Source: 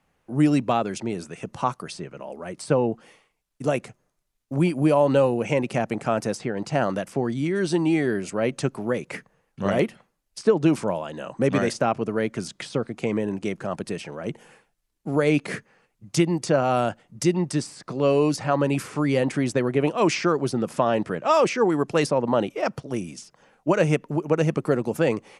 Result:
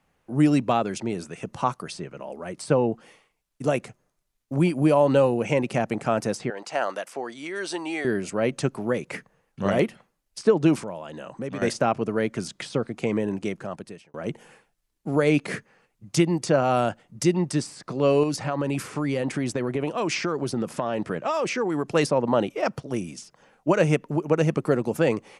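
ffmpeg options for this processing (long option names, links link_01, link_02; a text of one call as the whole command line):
ffmpeg -i in.wav -filter_complex "[0:a]asettb=1/sr,asplit=3[link_01][link_02][link_03];[link_01]atrim=end=6.504[link_04];[link_02]atrim=start=6.5:end=8.05,asetpts=PTS-STARTPTS,afade=type=in:duration=0.004:curve=qsin,afade=type=out:start_time=1.546:duration=0.004:curve=qsin,highpass=580[link_05];[link_03]atrim=start=8.046[link_06];[link_04][link_05]acrossfade=duration=0.004:curve1=hsin:curve2=qsin[link_07];[link_07][link_06]acrossfade=duration=0.004:curve1=qsin:curve2=hsin,asettb=1/sr,asplit=3[link_08][link_09][link_10];[link_08]atrim=end=10.794[link_11];[link_09]atrim=start=10.79:end=11.62,asetpts=PTS-STARTPTS,afade=type=in:duration=0.004:curve=qsin,afade=type=out:start_time=0.826:duration=0.004:curve=qsin,acompressor=threshold=-36dB:ratio=2:attack=3.2:release=140:knee=1:detection=peak[link_12];[link_10]atrim=start=11.616[link_13];[link_11][link_12]acrossfade=duration=0.004:curve1=hsin:curve2=qsin[link_14];[link_14][link_13]acrossfade=duration=0.004:curve1=qsin:curve2=hsin,asettb=1/sr,asplit=3[link_15][link_16][link_17];[link_15]atrim=end=18.234[link_18];[link_16]atrim=start=18.23:end=21.91,asetpts=PTS-STARTPTS,afade=type=in:duration=0.004:curve=qsin,afade=type=out:start_time=3.676:duration=0.004:curve=qsin,acompressor=threshold=-21dB:ratio=6:attack=3.2:release=140:knee=1:detection=peak[link_19];[link_17]atrim=start=21.906[link_20];[link_18][link_19]acrossfade=duration=0.004:curve1=hsin:curve2=qsin[link_21];[link_21][link_20]acrossfade=duration=0.004:curve1=qsin:curve2=hsin,asplit=2[link_22][link_23];[link_22]atrim=end=14.14,asetpts=PTS-STARTPTS,afade=type=out:start_time=13.39:duration=0.75[link_24];[link_23]atrim=start=14.14,asetpts=PTS-STARTPTS,afade=type=in:duration=0.004:curve=hsin[link_25];[link_24][link_25]concat=n=2:v=0:a=1" out.wav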